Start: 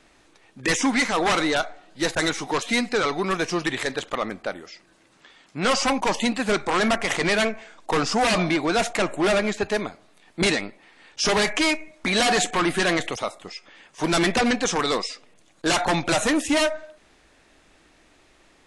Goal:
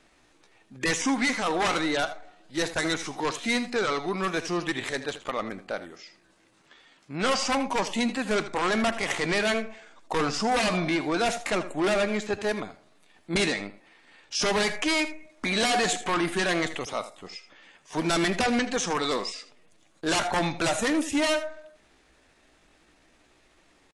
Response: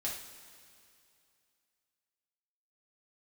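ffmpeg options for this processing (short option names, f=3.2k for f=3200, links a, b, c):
-filter_complex "[0:a]atempo=0.78,asplit=2[a][b];[b]aecho=0:1:80:0.2[c];[a][c]amix=inputs=2:normalize=0,volume=-4dB"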